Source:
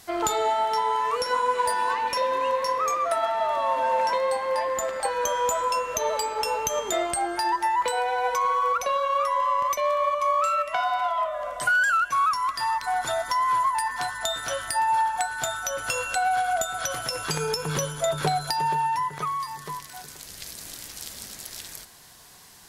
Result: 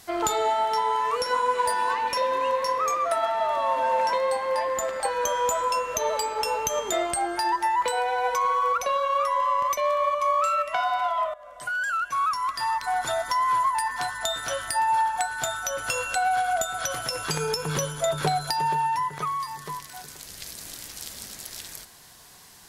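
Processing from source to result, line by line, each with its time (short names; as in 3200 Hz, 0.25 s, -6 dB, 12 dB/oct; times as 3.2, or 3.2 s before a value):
11.34–13.08 fade in equal-power, from -18.5 dB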